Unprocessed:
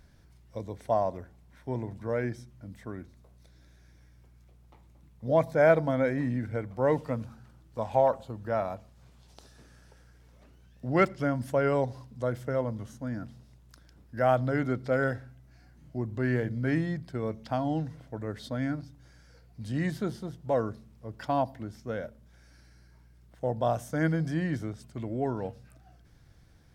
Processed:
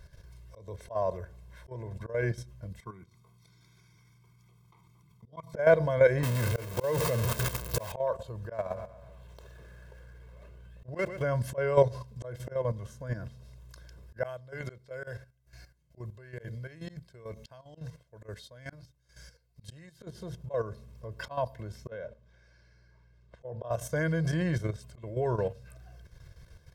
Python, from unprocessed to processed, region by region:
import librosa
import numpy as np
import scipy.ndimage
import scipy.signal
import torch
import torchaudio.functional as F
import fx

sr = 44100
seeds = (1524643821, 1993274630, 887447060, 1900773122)

y = fx.chain(x, sr, fx.highpass(hz=120.0, slope=24),
    fx.comb(ms=0.9, depth=0.96),
    fx.level_steps(step_db=22), at=(2.8, 5.54))
y = fx.chain(y, sr, fx.zero_step(step_db=-29.5),
    fx.highpass(hz=77.0, slope=12),
    fx.high_shelf(hz=9100.0, db=10.0), at=(6.23, 7.92))
y = fx.chain(y, sr, fx.median_filter(points=9),
    fx.echo_feedback(ms=122, feedback_pct=48, wet_db=-15.0), at=(8.53, 11.22))
y = fx.chain(y, sr, fx.high_shelf(hz=2700.0, db=9.0),
    fx.tremolo_db(hz=2.2, depth_db=23), at=(14.23, 20.03))
y = fx.chain(y, sr, fx.highpass(hz=100.0, slope=6),
    fx.air_absorb(metres=110.0), at=(21.88, 23.71))
y = y + 0.87 * np.pad(y, (int(1.9 * sr / 1000.0), 0))[:len(y)]
y = fx.auto_swell(y, sr, attack_ms=253.0)
y = fx.level_steps(y, sr, step_db=11)
y = y * librosa.db_to_amplitude(5.0)